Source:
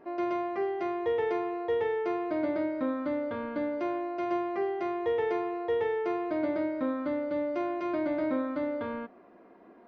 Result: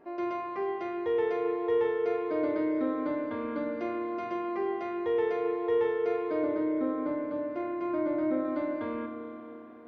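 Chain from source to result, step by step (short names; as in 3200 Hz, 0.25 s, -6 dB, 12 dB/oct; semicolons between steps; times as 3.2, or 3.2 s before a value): 6.43–8.45 high shelf 2500 Hz -11 dB; spring tank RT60 3.5 s, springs 32/43 ms, chirp 35 ms, DRR 4 dB; gain -2.5 dB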